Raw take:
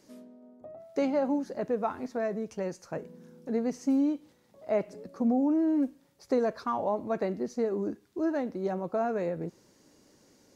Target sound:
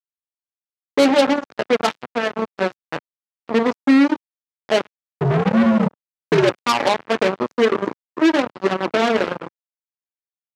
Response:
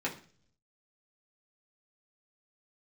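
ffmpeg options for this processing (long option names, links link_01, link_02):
-filter_complex "[0:a]aeval=exprs='sgn(val(0))*max(abs(val(0))-0.00178,0)':channel_layout=same,lowpass=5000,asettb=1/sr,asplit=3[link_01][link_02][link_03];[link_01]atrim=end=4.904[link_04];[link_02]atrim=start=4.9:end=6.52,asetpts=PTS-STARTPTS,afade=type=in:duration=0.004:curve=qsin,afade=type=out:start_time=1.616:duration=0.004:curve=qsin,afreqshift=-93[link_05];[link_03]atrim=start=6.516[link_06];[link_04][link_05]acrossfade=duration=0.004:curve1=hsin:curve2=qsin[link_07];[link_07][link_06]acrossfade=duration=0.004:curve1=qsin:curve2=hsin,asplit=3[link_08][link_09][link_10];[link_08]afade=type=out:start_time=8.75:duration=0.02[link_11];[link_09]equalizer=frequency=320:width=5.7:gain=13.5,afade=type=in:start_time=8.75:duration=0.02,afade=type=out:start_time=9.16:duration=0.02[link_12];[link_10]afade=type=in:start_time=9.16:duration=0.02[link_13];[link_11][link_12][link_13]amix=inputs=3:normalize=0,asplit=2[link_14][link_15];[link_15]adelay=103,lowpass=frequency=2500:poles=1,volume=-17dB,asplit=2[link_16][link_17];[link_17]adelay=103,lowpass=frequency=2500:poles=1,volume=0.37,asplit=2[link_18][link_19];[link_19]adelay=103,lowpass=frequency=2500:poles=1,volume=0.37[link_20];[link_14][link_16][link_18][link_20]amix=inputs=4:normalize=0,asplit=2[link_21][link_22];[1:a]atrim=start_sample=2205,asetrate=48510,aresample=44100[link_23];[link_22][link_23]afir=irnorm=-1:irlink=0,volume=-7.5dB[link_24];[link_21][link_24]amix=inputs=2:normalize=0,acrusher=bits=3:mix=0:aa=0.5,highpass=150,adynamicequalizer=threshold=0.0126:dfrequency=2100:dqfactor=0.7:tfrequency=2100:tqfactor=0.7:attack=5:release=100:ratio=0.375:range=2:mode=boostabove:tftype=highshelf,volume=7.5dB"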